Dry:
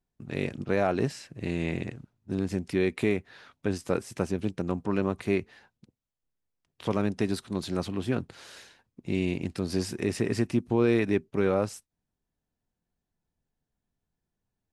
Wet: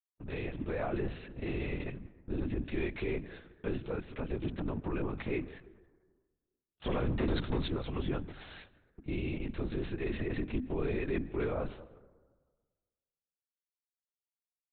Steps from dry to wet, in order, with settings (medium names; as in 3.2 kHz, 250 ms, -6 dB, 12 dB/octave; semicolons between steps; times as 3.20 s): gate -49 dBFS, range -51 dB; hum notches 50/100/150/200/250/300 Hz; peak limiter -23.5 dBFS, peak gain reduction 11.5 dB; 6.87–7.68 s: waveshaping leveller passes 2; reverberation RT60 1.5 s, pre-delay 117 ms, DRR 17.5 dB; LPC vocoder at 8 kHz whisper